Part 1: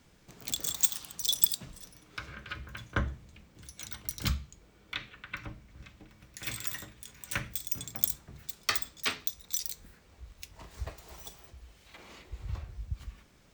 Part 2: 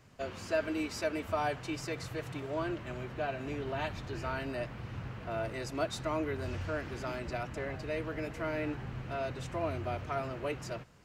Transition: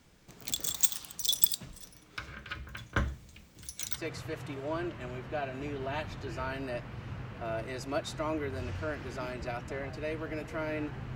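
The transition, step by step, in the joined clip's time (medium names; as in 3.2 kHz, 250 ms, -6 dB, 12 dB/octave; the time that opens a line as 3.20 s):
part 1
2.97–4.03 s: treble shelf 3.6 kHz +8 dB
3.99 s: go over to part 2 from 1.85 s, crossfade 0.08 s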